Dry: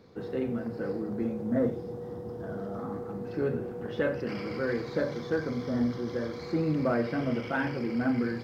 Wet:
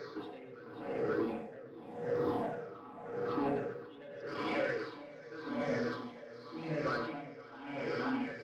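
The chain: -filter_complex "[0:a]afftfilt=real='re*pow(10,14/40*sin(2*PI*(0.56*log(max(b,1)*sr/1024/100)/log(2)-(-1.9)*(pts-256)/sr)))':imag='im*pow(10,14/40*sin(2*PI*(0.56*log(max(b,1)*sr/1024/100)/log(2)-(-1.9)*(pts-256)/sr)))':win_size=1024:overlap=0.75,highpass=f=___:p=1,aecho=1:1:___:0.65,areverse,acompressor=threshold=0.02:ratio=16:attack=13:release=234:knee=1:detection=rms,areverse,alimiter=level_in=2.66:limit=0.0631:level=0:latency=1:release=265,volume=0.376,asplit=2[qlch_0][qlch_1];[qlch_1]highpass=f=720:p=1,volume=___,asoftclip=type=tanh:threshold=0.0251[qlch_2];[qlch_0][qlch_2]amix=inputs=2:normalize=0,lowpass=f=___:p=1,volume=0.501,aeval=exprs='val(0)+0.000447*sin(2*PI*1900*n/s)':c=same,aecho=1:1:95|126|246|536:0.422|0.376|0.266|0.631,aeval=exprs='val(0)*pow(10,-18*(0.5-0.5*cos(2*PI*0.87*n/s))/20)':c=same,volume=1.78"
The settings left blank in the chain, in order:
210, 7, 5.01, 2.2k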